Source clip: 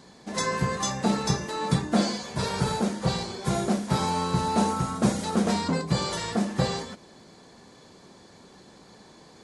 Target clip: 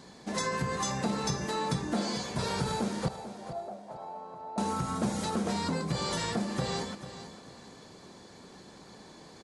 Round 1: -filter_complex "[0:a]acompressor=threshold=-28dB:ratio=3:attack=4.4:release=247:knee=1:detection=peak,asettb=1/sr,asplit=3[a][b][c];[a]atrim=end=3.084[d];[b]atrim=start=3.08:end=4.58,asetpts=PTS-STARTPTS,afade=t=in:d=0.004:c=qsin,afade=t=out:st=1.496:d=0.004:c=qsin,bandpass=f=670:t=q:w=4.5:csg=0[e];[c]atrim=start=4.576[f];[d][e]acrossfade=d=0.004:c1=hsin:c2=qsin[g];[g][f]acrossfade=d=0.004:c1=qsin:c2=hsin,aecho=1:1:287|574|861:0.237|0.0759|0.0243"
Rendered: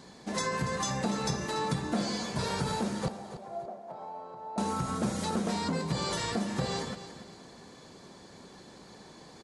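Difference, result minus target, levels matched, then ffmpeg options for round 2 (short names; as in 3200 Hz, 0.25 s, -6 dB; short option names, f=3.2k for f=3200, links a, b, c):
echo 0.157 s early
-filter_complex "[0:a]acompressor=threshold=-28dB:ratio=3:attack=4.4:release=247:knee=1:detection=peak,asettb=1/sr,asplit=3[a][b][c];[a]atrim=end=3.084[d];[b]atrim=start=3.08:end=4.58,asetpts=PTS-STARTPTS,afade=t=in:d=0.004:c=qsin,afade=t=out:st=1.496:d=0.004:c=qsin,bandpass=f=670:t=q:w=4.5:csg=0[e];[c]atrim=start=4.576[f];[d][e]acrossfade=d=0.004:c1=hsin:c2=qsin[g];[g][f]acrossfade=d=0.004:c1=qsin:c2=hsin,aecho=1:1:444|888|1332:0.237|0.0759|0.0243"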